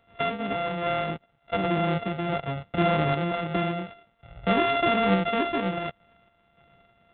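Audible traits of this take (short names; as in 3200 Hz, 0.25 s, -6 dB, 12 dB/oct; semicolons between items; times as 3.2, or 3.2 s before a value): a buzz of ramps at a fixed pitch in blocks of 64 samples; random-step tremolo; G.726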